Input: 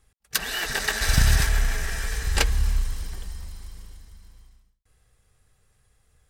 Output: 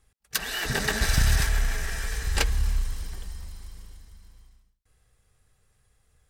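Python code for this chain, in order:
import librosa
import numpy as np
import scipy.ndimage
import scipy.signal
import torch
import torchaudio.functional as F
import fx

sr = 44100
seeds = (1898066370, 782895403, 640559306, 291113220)

y = fx.peak_eq(x, sr, hz=140.0, db=13.5, octaves=3.0, at=(0.65, 1.06))
y = 10.0 ** (-7.0 / 20.0) * np.tanh(y / 10.0 ** (-7.0 / 20.0))
y = y * librosa.db_to_amplitude(-2.0)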